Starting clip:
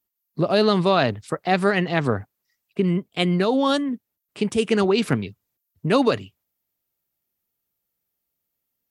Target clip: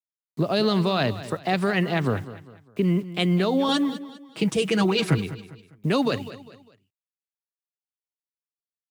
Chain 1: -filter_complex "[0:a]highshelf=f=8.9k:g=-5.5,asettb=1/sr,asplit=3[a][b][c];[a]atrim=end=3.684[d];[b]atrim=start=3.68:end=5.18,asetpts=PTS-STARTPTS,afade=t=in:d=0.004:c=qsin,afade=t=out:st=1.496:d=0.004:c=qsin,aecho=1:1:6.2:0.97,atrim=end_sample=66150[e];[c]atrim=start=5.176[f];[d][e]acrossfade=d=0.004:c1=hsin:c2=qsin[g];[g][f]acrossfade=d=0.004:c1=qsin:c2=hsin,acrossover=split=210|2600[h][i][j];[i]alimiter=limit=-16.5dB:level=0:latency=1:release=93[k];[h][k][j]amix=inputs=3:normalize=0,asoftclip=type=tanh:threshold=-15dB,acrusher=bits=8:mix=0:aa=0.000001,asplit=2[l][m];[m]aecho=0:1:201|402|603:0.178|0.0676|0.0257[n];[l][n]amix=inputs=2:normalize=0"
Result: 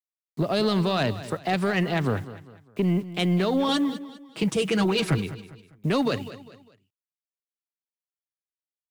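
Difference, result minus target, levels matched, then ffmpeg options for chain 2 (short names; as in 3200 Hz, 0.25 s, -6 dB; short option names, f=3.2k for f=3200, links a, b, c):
soft clip: distortion +18 dB
-filter_complex "[0:a]highshelf=f=8.9k:g=-5.5,asettb=1/sr,asplit=3[a][b][c];[a]atrim=end=3.684[d];[b]atrim=start=3.68:end=5.18,asetpts=PTS-STARTPTS,afade=t=in:d=0.004:c=qsin,afade=t=out:st=1.496:d=0.004:c=qsin,aecho=1:1:6.2:0.97,atrim=end_sample=66150[e];[c]atrim=start=5.176[f];[d][e]acrossfade=d=0.004:c1=hsin:c2=qsin[g];[g][f]acrossfade=d=0.004:c1=qsin:c2=hsin,acrossover=split=210|2600[h][i][j];[i]alimiter=limit=-16.5dB:level=0:latency=1:release=93[k];[h][k][j]amix=inputs=3:normalize=0,asoftclip=type=tanh:threshold=-4.5dB,acrusher=bits=8:mix=0:aa=0.000001,asplit=2[l][m];[m]aecho=0:1:201|402|603:0.178|0.0676|0.0257[n];[l][n]amix=inputs=2:normalize=0"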